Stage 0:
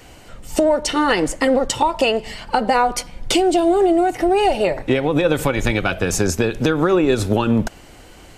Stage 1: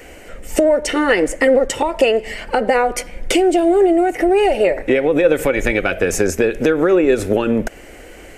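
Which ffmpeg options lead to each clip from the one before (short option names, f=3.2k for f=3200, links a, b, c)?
-filter_complex "[0:a]equalizer=f=125:t=o:w=1:g=-10,equalizer=f=500:t=o:w=1:g=7,equalizer=f=1k:t=o:w=1:g=-8,equalizer=f=2k:t=o:w=1:g=8,equalizer=f=4k:t=o:w=1:g=-9,asplit=2[a][b];[b]acompressor=threshold=-23dB:ratio=6,volume=0.5dB[c];[a][c]amix=inputs=2:normalize=0,volume=-2dB"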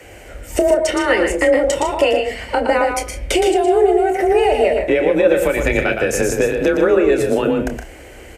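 -filter_complex "[0:a]asplit=2[a][b];[b]adelay=28,volume=-10dB[c];[a][c]amix=inputs=2:normalize=0,asplit=2[d][e];[e]aecho=0:1:116.6|154.5:0.501|0.251[f];[d][f]amix=inputs=2:normalize=0,afreqshift=29,volume=-1.5dB"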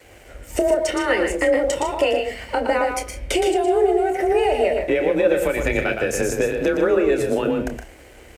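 -af "aeval=exprs='sgn(val(0))*max(abs(val(0))-0.00473,0)':c=same,volume=-4dB"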